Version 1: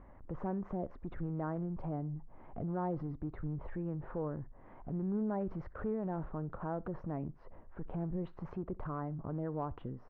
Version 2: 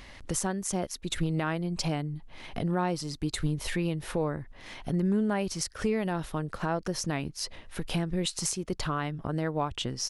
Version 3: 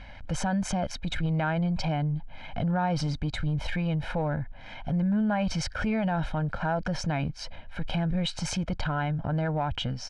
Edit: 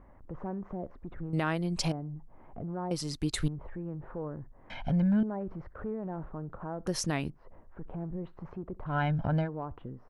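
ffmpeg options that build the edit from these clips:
-filter_complex "[1:a]asplit=3[a][b][c];[2:a]asplit=2[d][e];[0:a]asplit=6[f][g][h][i][j][k];[f]atrim=end=1.332[l];[a]atrim=start=1.328:end=1.922[m];[g]atrim=start=1.918:end=2.912[n];[b]atrim=start=2.908:end=3.482[o];[h]atrim=start=3.478:end=4.702[p];[d]atrim=start=4.698:end=5.232[q];[i]atrim=start=5.228:end=6.872[r];[c]atrim=start=6.868:end=7.302[s];[j]atrim=start=7.298:end=8.96[t];[e]atrim=start=8.86:end=9.5[u];[k]atrim=start=9.4[v];[l][m]acrossfade=d=0.004:c1=hsin:c2=hsin[w];[w][n]acrossfade=d=0.004:c1=hsin:c2=hsin[x];[x][o]acrossfade=d=0.004:c1=hsin:c2=hsin[y];[y][p]acrossfade=d=0.004:c1=hsin:c2=hsin[z];[z][q]acrossfade=d=0.004:c1=hsin:c2=hsin[aa];[aa][r]acrossfade=d=0.004:c1=hsin:c2=hsin[ab];[ab][s]acrossfade=d=0.004:c1=hsin:c2=hsin[ac];[ac][t]acrossfade=d=0.004:c1=hsin:c2=hsin[ad];[ad][u]acrossfade=d=0.1:c1=tri:c2=tri[ae];[ae][v]acrossfade=d=0.1:c1=tri:c2=tri"

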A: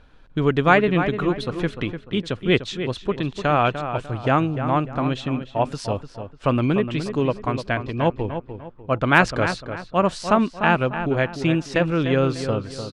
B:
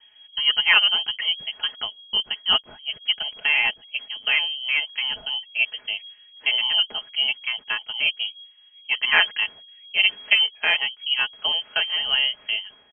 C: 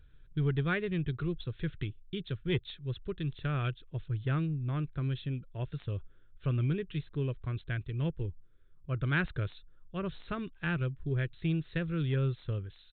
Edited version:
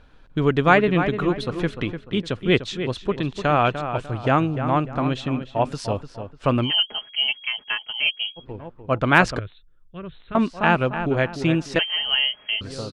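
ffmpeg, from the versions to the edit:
-filter_complex "[1:a]asplit=2[a][b];[0:a]asplit=4[c][d][e][f];[c]atrim=end=6.72[g];[a]atrim=start=6.62:end=8.46[h];[d]atrim=start=8.36:end=9.392[i];[2:a]atrim=start=9.388:end=10.352[j];[e]atrim=start=10.348:end=11.792[k];[b]atrim=start=11.788:end=12.612[l];[f]atrim=start=12.608[m];[g][h]acrossfade=d=0.1:c1=tri:c2=tri[n];[n][i]acrossfade=d=0.1:c1=tri:c2=tri[o];[o][j]acrossfade=d=0.004:c1=hsin:c2=hsin[p];[p][k]acrossfade=d=0.004:c1=hsin:c2=hsin[q];[q][l]acrossfade=d=0.004:c1=hsin:c2=hsin[r];[r][m]acrossfade=d=0.004:c1=hsin:c2=hsin"

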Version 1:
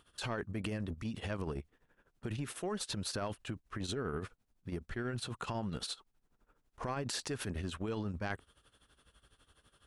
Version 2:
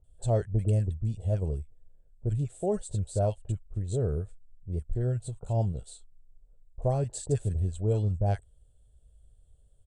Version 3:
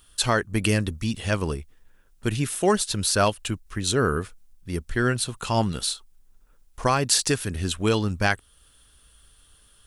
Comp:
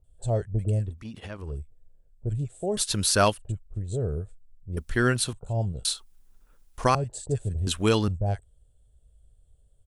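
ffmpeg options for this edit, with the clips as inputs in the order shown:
-filter_complex "[2:a]asplit=4[a][b][c][d];[1:a]asplit=6[e][f][g][h][i][j];[e]atrim=end=1.05[k];[0:a]atrim=start=0.81:end=1.58[l];[f]atrim=start=1.34:end=2.772[m];[a]atrim=start=2.768:end=3.392[n];[g]atrim=start=3.388:end=4.772[o];[b]atrim=start=4.768:end=5.332[p];[h]atrim=start=5.328:end=5.852[q];[c]atrim=start=5.848:end=6.952[r];[i]atrim=start=6.948:end=7.672[s];[d]atrim=start=7.668:end=8.082[t];[j]atrim=start=8.078[u];[k][l]acrossfade=d=0.24:c1=tri:c2=tri[v];[v][m]acrossfade=d=0.24:c1=tri:c2=tri[w];[w][n]acrossfade=d=0.004:c1=hsin:c2=hsin[x];[x][o]acrossfade=d=0.004:c1=hsin:c2=hsin[y];[y][p]acrossfade=d=0.004:c1=hsin:c2=hsin[z];[z][q]acrossfade=d=0.004:c1=hsin:c2=hsin[aa];[aa][r]acrossfade=d=0.004:c1=hsin:c2=hsin[ab];[ab][s]acrossfade=d=0.004:c1=hsin:c2=hsin[ac];[ac][t]acrossfade=d=0.004:c1=hsin:c2=hsin[ad];[ad][u]acrossfade=d=0.004:c1=hsin:c2=hsin"

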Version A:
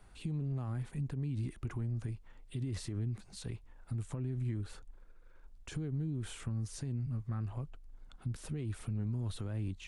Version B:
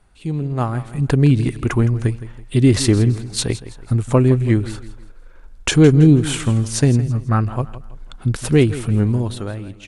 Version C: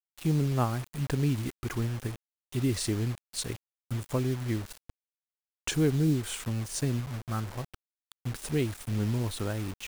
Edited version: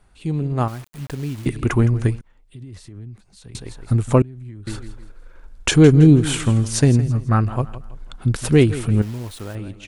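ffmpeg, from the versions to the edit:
-filter_complex "[2:a]asplit=2[a][b];[0:a]asplit=2[c][d];[1:a]asplit=5[e][f][g][h][i];[e]atrim=end=0.682[j];[a]atrim=start=0.678:end=1.462[k];[f]atrim=start=1.458:end=2.212[l];[c]atrim=start=2.208:end=3.552[m];[g]atrim=start=3.548:end=4.222[n];[d]atrim=start=4.218:end=4.672[o];[h]atrim=start=4.668:end=9.022[p];[b]atrim=start=9.018:end=9.552[q];[i]atrim=start=9.548[r];[j][k]acrossfade=d=0.004:c1=hsin:c2=hsin[s];[s][l]acrossfade=d=0.004:c1=hsin:c2=hsin[t];[t][m]acrossfade=d=0.004:c1=hsin:c2=hsin[u];[u][n]acrossfade=d=0.004:c1=hsin:c2=hsin[v];[v][o]acrossfade=d=0.004:c1=hsin:c2=hsin[w];[w][p]acrossfade=d=0.004:c1=hsin:c2=hsin[x];[x][q]acrossfade=d=0.004:c1=hsin:c2=hsin[y];[y][r]acrossfade=d=0.004:c1=hsin:c2=hsin"

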